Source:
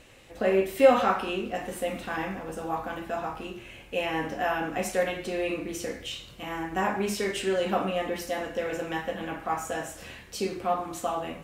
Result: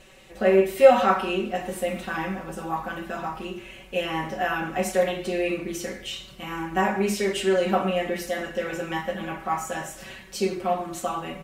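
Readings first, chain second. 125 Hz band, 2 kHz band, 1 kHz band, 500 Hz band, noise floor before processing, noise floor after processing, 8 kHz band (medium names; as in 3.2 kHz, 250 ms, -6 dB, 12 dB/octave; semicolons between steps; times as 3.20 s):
+4.5 dB, +3.0 dB, +3.0 dB, +4.0 dB, -48 dBFS, -46 dBFS, +2.5 dB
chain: comb 5.3 ms, depth 90%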